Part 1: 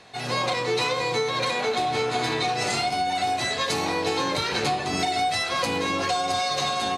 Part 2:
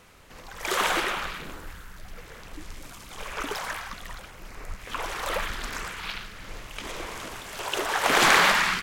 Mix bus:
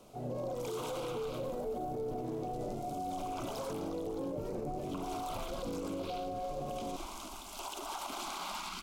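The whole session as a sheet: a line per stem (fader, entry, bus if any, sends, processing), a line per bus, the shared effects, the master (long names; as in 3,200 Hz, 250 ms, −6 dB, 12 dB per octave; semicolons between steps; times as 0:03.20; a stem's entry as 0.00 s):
−13.5 dB, 0.00 s, no send, low-pass with resonance 590 Hz, resonance Q 4.9; low shelf with overshoot 410 Hz +7.5 dB, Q 1.5
−4.5 dB, 0.00 s, no send, downward compressor, threshold −26 dBFS, peak gain reduction 12 dB; phaser with its sweep stopped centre 480 Hz, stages 6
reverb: not used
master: brickwall limiter −30.5 dBFS, peak gain reduction 12 dB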